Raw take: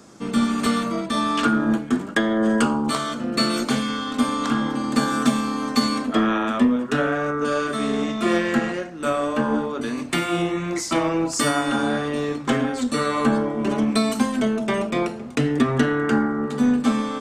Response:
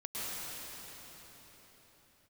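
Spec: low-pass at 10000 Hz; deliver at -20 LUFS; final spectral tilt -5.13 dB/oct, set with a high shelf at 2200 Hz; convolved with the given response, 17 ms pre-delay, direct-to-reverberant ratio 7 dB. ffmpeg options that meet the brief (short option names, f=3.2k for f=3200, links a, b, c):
-filter_complex "[0:a]lowpass=10k,highshelf=f=2.2k:g=-7,asplit=2[a][b];[1:a]atrim=start_sample=2205,adelay=17[c];[b][c]afir=irnorm=-1:irlink=0,volume=-11.5dB[d];[a][d]amix=inputs=2:normalize=0,volume=2dB"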